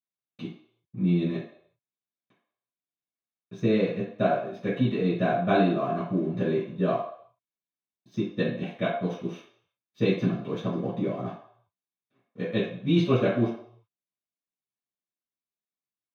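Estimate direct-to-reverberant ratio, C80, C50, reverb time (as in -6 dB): -12.5 dB, 8.0 dB, 3.5 dB, 0.60 s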